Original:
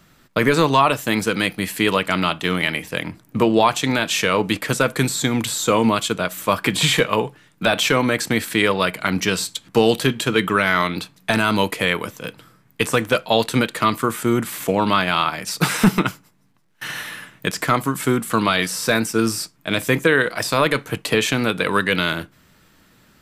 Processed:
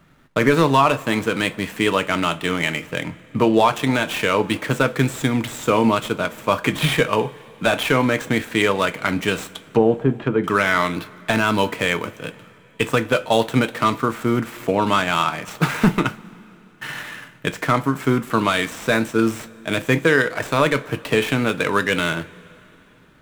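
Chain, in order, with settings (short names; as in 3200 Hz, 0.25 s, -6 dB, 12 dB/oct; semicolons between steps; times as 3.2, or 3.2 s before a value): median filter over 9 samples; 9.51–10.44 treble ducked by the level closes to 910 Hz, closed at -16.5 dBFS; two-slope reverb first 0.22 s, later 3.4 s, from -22 dB, DRR 10.5 dB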